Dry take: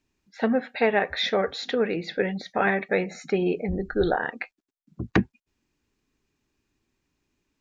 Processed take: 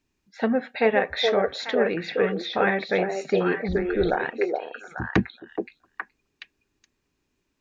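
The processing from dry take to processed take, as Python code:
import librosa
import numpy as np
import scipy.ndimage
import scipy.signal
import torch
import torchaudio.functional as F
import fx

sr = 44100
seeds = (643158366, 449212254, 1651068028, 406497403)

y = fx.echo_stepped(x, sr, ms=421, hz=500.0, octaves=1.4, feedback_pct=70, wet_db=-0.5)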